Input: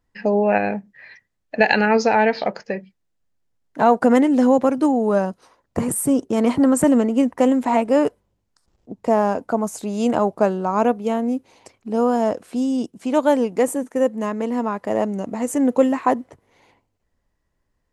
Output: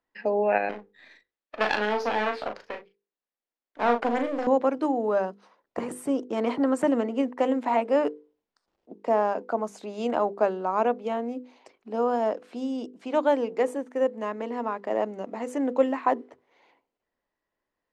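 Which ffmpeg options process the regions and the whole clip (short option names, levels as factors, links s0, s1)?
-filter_complex "[0:a]asettb=1/sr,asplit=3[s0][s1][s2];[s0]atrim=end=0.694[s3];[s1]atrim=start=0.69:end=4.47,asetpts=PTS-STARTPTS,afade=t=in:d=0.004:c=qsin,afade=t=out:st=3.776:d=0.004:c=qsin,highpass=f=210:w=0.5412,highpass=f=210:w=1.3066,aeval=exprs='max(val(0),0)':c=same,asplit=2[s4][s5];[s5]adelay=38,volume=0.473[s6];[s4][s6]amix=inputs=2:normalize=0,atrim=end_sample=166698[s7];[s2]atrim=start=4.466[s8];[s3][s7]acrossfade=d=0.004:c1=hsin:c2=qsin[s9];[s9][s8]acrossfade=d=0.004:c1=qsin:c2=hsin,acrossover=split=250 5000:gain=0.112 1 0.126[s10][s11][s12];[s10][s11][s12]amix=inputs=3:normalize=0,bandreject=f=50:t=h:w=6,bandreject=f=100:t=h:w=6,bandreject=f=150:t=h:w=6,bandreject=f=200:t=h:w=6,bandreject=f=250:t=h:w=6,bandreject=f=300:t=h:w=6,bandreject=f=350:t=h:w=6,bandreject=f=400:t=h:w=6,bandreject=f=450:t=h:w=6,bandreject=f=500:t=h:w=6,volume=0.596"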